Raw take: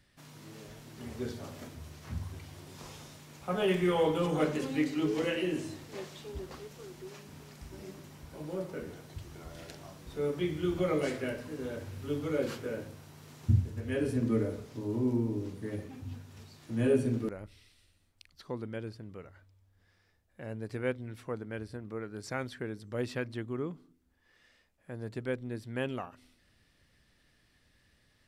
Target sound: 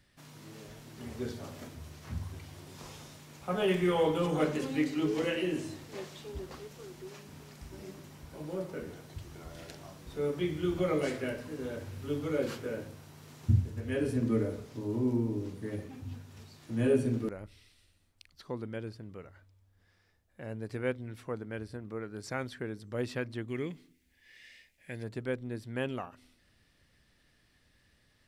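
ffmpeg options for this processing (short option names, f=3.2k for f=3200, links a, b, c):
-filter_complex "[0:a]asplit=3[a][b][c];[a]afade=t=out:st=23.48:d=0.02[d];[b]highshelf=f=1.6k:t=q:w=3:g=8.5,afade=t=in:st=23.48:d=0.02,afade=t=out:st=25.02:d=0.02[e];[c]afade=t=in:st=25.02:d=0.02[f];[d][e][f]amix=inputs=3:normalize=0"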